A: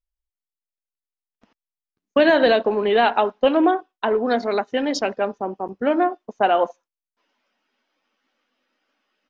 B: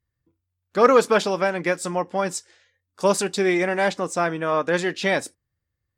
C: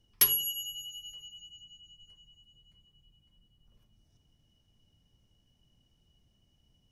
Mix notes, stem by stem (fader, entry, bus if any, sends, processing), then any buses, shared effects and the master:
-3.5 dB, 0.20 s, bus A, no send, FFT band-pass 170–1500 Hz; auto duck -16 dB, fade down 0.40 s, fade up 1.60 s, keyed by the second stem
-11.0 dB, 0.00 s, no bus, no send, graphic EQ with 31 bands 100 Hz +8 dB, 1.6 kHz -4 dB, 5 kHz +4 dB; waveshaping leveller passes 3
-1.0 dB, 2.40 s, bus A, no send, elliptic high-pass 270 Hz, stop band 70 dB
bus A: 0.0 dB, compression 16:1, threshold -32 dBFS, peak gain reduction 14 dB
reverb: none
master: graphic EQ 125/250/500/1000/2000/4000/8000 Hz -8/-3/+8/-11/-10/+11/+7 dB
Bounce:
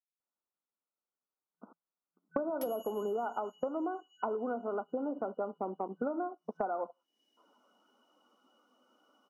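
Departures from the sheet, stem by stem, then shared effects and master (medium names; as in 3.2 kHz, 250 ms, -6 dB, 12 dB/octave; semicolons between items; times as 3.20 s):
stem A -3.5 dB -> +5.5 dB; stem B: muted; master: missing graphic EQ 125/250/500/1000/2000/4000/8000 Hz -8/-3/+8/-11/-10/+11/+7 dB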